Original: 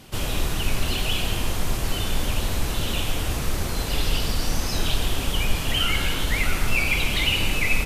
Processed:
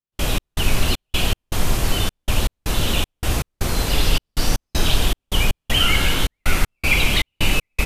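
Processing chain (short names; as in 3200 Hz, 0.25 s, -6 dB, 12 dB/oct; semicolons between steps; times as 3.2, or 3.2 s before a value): step gate ".x.xx.x.xxx" 79 bpm -60 dB; gain +5.5 dB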